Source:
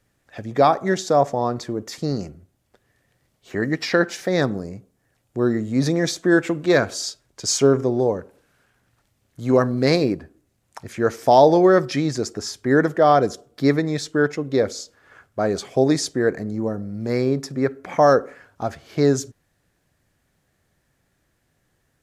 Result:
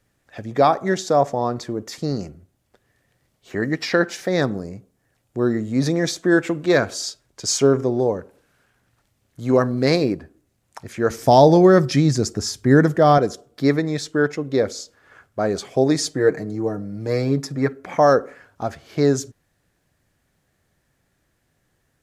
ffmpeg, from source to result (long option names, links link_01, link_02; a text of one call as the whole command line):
ffmpeg -i in.wav -filter_complex "[0:a]asettb=1/sr,asplit=3[link_01][link_02][link_03];[link_01]atrim=end=11.104[link_04];[link_02]atrim=start=11.1:end=13.18,asetpts=PTS-STARTPTS,afade=type=in:duration=0.004:curve=qsin,afade=type=out:start_time=2.076:duration=0.004:curve=qsin,bass=frequency=250:gain=10,treble=frequency=4000:gain=5[link_05];[link_03]atrim=start=13.176[link_06];[link_04][link_05]acrossfade=duration=0.004:curve1=hsin:curve2=qsin[link_07];[link_07][link_06]acrossfade=duration=0.004:curve1=qsin:curve2=hsin,asettb=1/sr,asplit=3[link_08][link_09][link_10];[link_08]atrim=end=15.984[link_11];[link_09]atrim=start=15.98:end=17.73,asetpts=PTS-STARTPTS,afade=type=in:duration=0.004:curve=qsin,afade=type=out:start_time=1.746:duration=0.004:curve=qsin,aecho=1:1:6.5:0.65,atrim=end_sample=77175[link_12];[link_10]atrim=start=17.726[link_13];[link_11][link_12]acrossfade=duration=0.004:curve1=hsin:curve2=qsin[link_14];[link_14][link_13]acrossfade=duration=0.004:curve1=qsin:curve2=hsin" out.wav